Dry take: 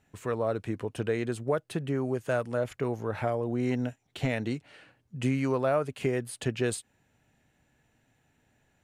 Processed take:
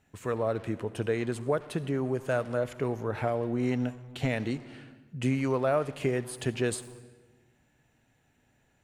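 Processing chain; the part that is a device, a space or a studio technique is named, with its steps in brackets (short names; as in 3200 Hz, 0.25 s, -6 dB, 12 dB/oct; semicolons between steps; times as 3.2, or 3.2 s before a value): saturated reverb return (on a send at -10 dB: reverb RT60 1.1 s, pre-delay 57 ms + soft clip -33.5 dBFS, distortion -6 dB)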